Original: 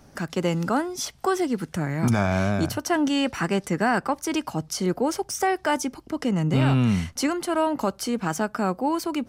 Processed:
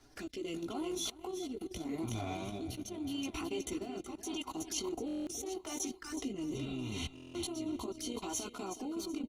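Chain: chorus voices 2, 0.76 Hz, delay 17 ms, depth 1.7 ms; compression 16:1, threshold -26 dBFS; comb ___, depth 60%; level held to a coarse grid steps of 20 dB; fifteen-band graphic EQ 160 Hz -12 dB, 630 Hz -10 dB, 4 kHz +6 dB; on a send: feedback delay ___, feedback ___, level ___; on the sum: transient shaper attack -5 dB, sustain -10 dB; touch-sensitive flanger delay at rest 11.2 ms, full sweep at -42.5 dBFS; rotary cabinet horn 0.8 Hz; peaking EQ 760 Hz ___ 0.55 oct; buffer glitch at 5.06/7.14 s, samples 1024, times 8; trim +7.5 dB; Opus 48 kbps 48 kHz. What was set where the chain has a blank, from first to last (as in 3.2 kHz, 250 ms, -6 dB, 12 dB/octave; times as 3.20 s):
2.9 ms, 372 ms, 53%, -8 dB, +4.5 dB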